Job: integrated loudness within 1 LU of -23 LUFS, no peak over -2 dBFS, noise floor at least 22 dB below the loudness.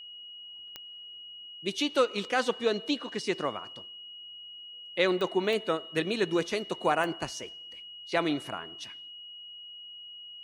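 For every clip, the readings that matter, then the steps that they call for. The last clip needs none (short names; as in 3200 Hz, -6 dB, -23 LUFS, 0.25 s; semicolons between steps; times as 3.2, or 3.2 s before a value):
clicks 4; steady tone 2900 Hz; tone level -43 dBFS; loudness -30.0 LUFS; peak -12.5 dBFS; loudness target -23.0 LUFS
-> de-click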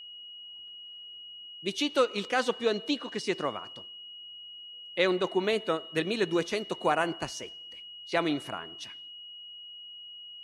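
clicks 0; steady tone 2900 Hz; tone level -43 dBFS
-> notch 2900 Hz, Q 30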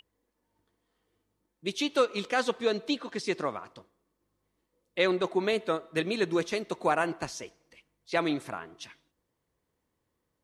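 steady tone none; loudness -30.0 LUFS; peak -12.5 dBFS; loudness target -23.0 LUFS
-> gain +7 dB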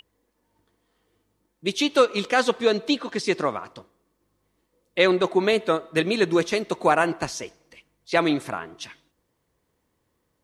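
loudness -23.0 LUFS; peak -5.5 dBFS; noise floor -74 dBFS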